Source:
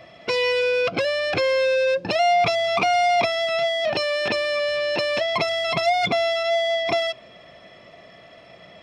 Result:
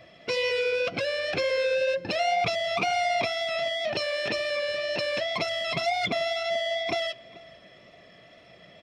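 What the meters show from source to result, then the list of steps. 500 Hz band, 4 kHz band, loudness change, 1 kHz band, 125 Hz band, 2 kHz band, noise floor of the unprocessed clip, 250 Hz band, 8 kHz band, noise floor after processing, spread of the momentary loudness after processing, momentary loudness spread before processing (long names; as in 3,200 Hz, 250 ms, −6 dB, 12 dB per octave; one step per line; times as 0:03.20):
−6.5 dB, −4.5 dB, −5.5 dB, −7.0 dB, −4.5 dB, −5.0 dB, −48 dBFS, −5.0 dB, −3.5 dB, −53 dBFS, 3 LU, 4 LU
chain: parametric band 940 Hz −5.5 dB 1 octave
flanger 2 Hz, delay 0.8 ms, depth 7.4 ms, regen −58%
slap from a distant wall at 75 metres, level −20 dB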